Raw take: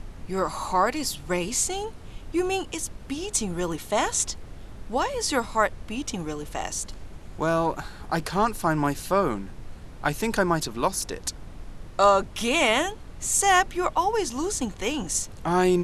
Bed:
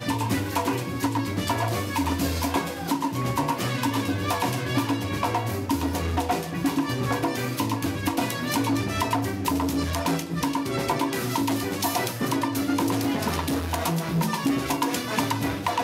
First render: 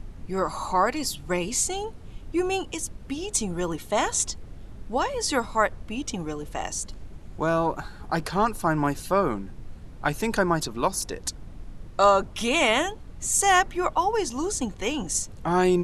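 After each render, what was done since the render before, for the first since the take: denoiser 6 dB, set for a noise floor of -43 dBFS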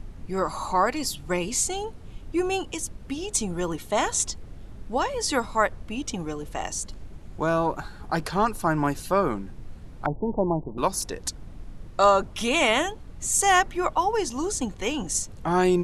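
10.06–10.78 steep low-pass 950 Hz 72 dB/oct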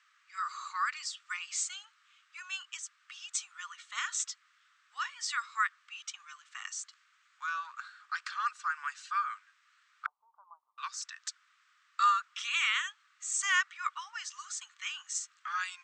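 Chebyshev band-pass 1200–8100 Hz, order 5; high shelf 2400 Hz -8.5 dB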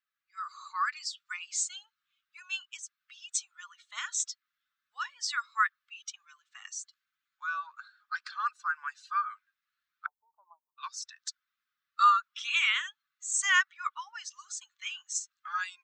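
per-bin expansion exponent 1.5; AGC gain up to 5 dB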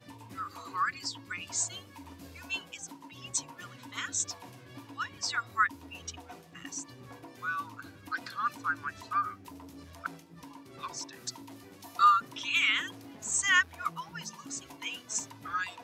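add bed -23.5 dB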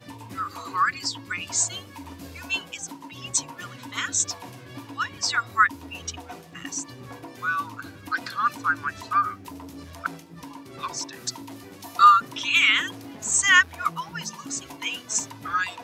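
gain +8 dB

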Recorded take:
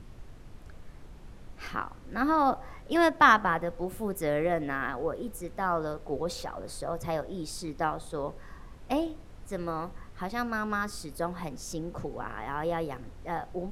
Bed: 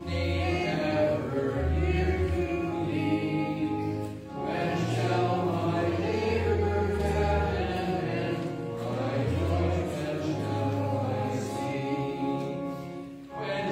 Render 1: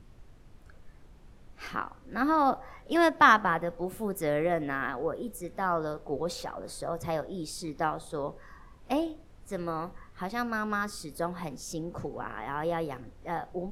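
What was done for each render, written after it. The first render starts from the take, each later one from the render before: noise print and reduce 6 dB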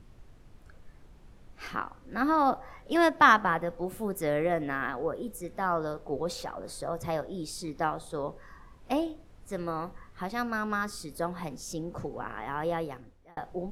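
12.75–13.37 fade out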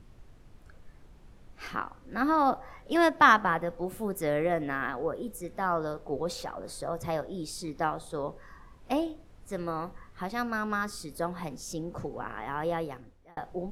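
nothing audible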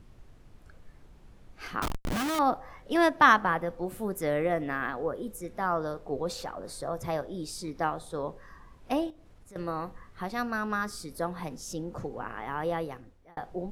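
1.82–2.39 Schmitt trigger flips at -44.5 dBFS; 9.1–9.56 compressor 4:1, threshold -50 dBFS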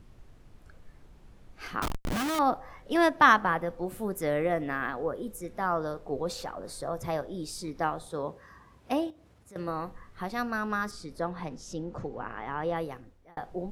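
8.07–9.68 HPF 57 Hz 24 dB/oct; 10.91–12.76 air absorption 69 m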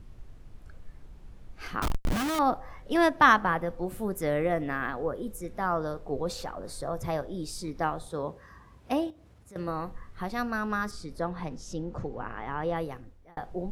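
low shelf 110 Hz +7.5 dB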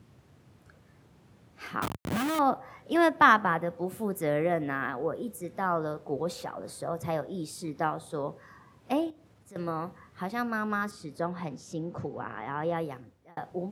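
HPF 100 Hz 24 dB/oct; dynamic EQ 5300 Hz, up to -5 dB, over -53 dBFS, Q 1.4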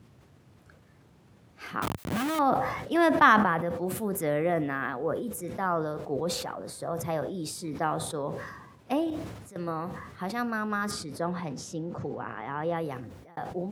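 sustainer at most 47 dB/s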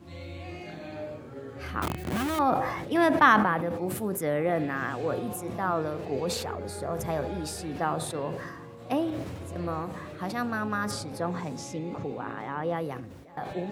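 add bed -12.5 dB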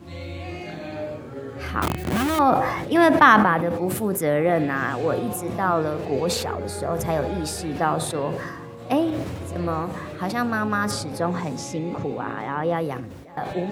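gain +6.5 dB; limiter -2 dBFS, peak gain reduction 1.5 dB

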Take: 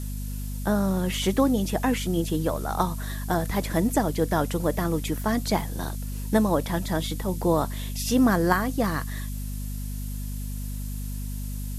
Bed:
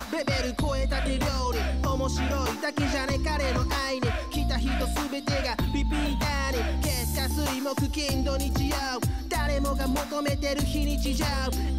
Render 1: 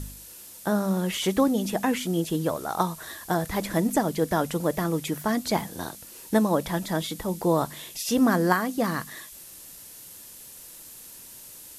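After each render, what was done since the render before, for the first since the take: de-hum 50 Hz, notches 5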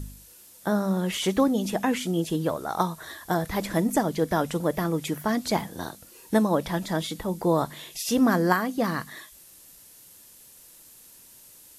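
noise print and reduce 6 dB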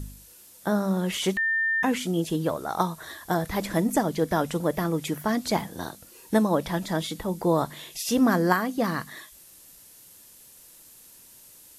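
1.37–1.83 bleep 1800 Hz -21.5 dBFS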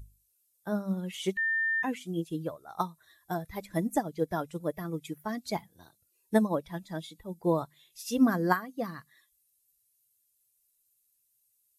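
per-bin expansion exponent 1.5; upward expander 1.5:1, over -41 dBFS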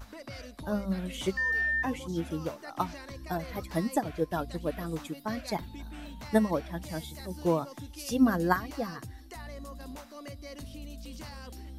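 add bed -16.5 dB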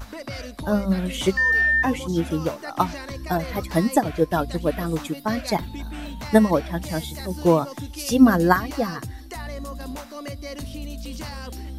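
gain +9.5 dB; limiter -2 dBFS, peak gain reduction 2 dB

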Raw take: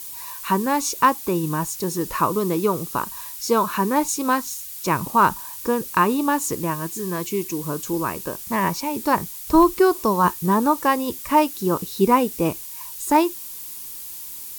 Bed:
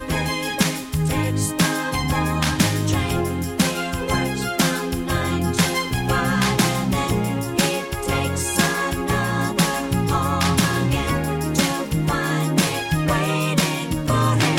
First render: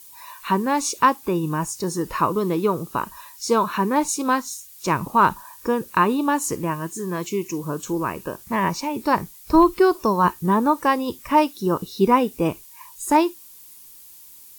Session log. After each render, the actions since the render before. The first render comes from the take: noise print and reduce 10 dB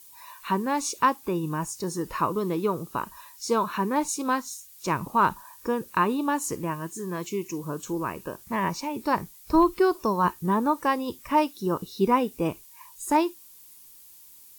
gain -5 dB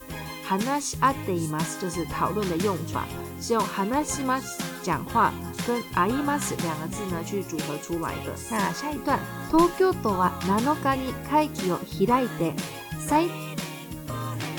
add bed -13.5 dB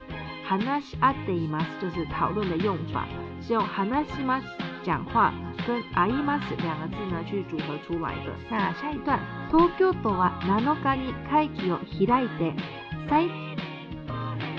steep low-pass 3900 Hz 36 dB/oct; dynamic EQ 560 Hz, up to -6 dB, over -43 dBFS, Q 3.8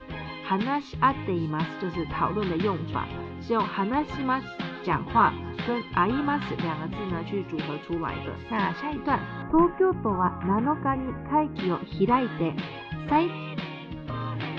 4.75–5.74 doubler 14 ms -6 dB; 9.42–11.56 Bessel low-pass 1400 Hz, order 8

